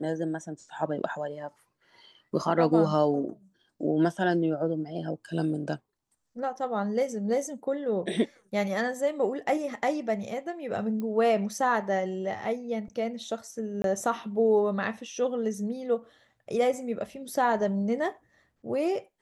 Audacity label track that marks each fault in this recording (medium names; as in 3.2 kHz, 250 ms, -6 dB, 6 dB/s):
11.000000	11.000000	pop -23 dBFS
13.820000	13.840000	dropout 22 ms